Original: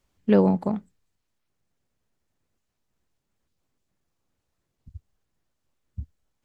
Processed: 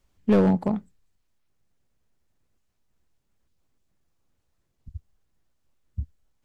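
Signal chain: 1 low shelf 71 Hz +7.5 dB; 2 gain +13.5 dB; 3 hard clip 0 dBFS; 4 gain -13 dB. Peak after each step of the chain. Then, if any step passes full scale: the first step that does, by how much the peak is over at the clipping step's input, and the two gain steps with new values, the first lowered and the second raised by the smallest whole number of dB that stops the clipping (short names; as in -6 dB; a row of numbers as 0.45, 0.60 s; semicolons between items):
-6.0, +7.5, 0.0, -13.0 dBFS; step 2, 7.5 dB; step 2 +5.5 dB, step 4 -5 dB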